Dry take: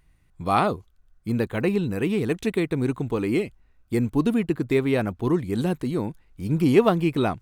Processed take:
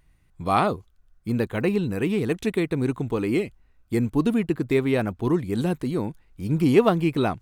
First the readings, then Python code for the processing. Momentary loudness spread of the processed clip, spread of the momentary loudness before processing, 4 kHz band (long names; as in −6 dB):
9 LU, 9 LU, 0.0 dB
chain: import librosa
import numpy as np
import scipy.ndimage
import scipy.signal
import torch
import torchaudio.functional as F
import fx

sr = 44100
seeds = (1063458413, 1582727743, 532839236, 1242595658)

y = fx.wow_flutter(x, sr, seeds[0], rate_hz=2.1, depth_cents=22.0)